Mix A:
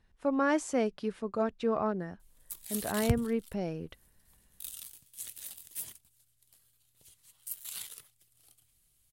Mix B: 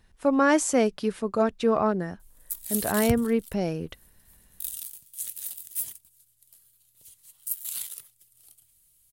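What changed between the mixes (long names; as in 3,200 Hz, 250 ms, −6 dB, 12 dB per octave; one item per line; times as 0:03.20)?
speech +7.0 dB
master: add high-shelf EQ 7,100 Hz +11.5 dB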